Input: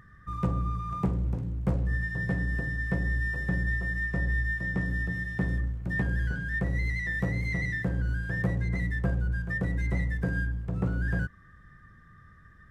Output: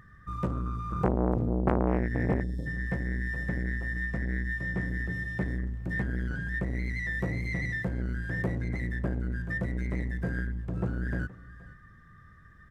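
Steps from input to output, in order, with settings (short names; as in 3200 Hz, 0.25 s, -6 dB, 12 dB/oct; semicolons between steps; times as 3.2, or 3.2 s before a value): 0.92–2.41 low shelf 240 Hz +11 dB; 2.43–2.67 spectral delete 640–3100 Hz; on a send: echo 0.473 s -21 dB; on the sum: core saturation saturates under 810 Hz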